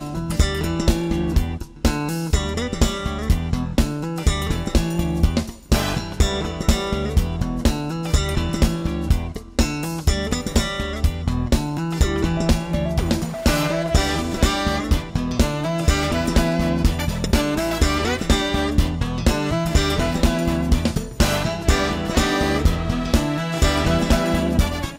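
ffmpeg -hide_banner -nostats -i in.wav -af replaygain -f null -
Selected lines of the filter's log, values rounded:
track_gain = +3.5 dB
track_peak = 0.324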